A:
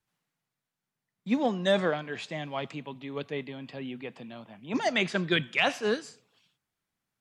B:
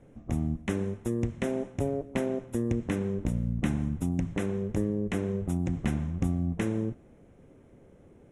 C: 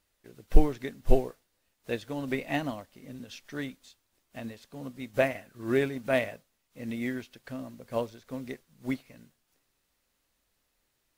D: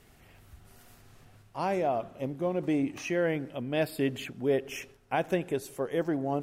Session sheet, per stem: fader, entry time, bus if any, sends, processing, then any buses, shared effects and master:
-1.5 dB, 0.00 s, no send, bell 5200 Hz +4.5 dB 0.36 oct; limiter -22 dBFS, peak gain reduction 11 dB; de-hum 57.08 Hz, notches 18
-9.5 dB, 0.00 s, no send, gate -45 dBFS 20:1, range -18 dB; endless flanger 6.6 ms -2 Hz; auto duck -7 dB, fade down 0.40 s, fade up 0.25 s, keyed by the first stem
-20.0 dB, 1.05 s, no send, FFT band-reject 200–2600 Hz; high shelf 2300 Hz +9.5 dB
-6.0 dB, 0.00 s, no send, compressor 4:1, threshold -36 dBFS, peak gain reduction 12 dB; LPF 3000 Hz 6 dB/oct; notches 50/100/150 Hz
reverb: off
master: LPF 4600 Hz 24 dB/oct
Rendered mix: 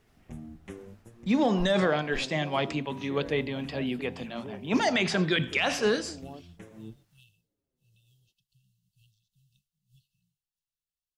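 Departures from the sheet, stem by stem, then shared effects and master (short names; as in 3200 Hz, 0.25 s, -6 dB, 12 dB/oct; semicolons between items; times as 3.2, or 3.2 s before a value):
stem A -1.5 dB -> +7.0 dB; stem C: missing high shelf 2300 Hz +9.5 dB; master: missing LPF 4600 Hz 24 dB/oct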